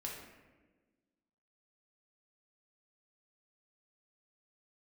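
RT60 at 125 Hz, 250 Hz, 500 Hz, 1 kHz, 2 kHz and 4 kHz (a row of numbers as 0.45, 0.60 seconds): 1.5, 1.9, 1.5, 1.1, 1.1, 0.75 seconds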